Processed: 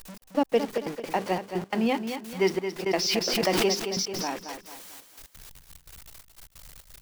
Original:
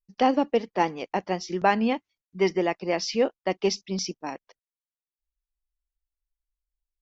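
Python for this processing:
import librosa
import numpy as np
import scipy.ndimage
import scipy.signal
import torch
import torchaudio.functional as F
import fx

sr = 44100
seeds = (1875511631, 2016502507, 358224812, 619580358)

p1 = x + 0.5 * 10.0 ** (-34.0 / 20.0) * np.sign(x)
p2 = fx.low_shelf(p1, sr, hz=99.0, db=-9.5)
p3 = fx.hum_notches(p2, sr, base_hz=50, count=8)
p4 = fx.step_gate(p3, sr, bpm=174, pattern='xx..x.xxx.x.xx', floor_db=-60.0, edge_ms=4.5)
p5 = p4 + fx.echo_feedback(p4, sr, ms=221, feedback_pct=37, wet_db=-8.5, dry=0)
y = fx.pre_swell(p5, sr, db_per_s=29.0, at=(2.86, 4.34))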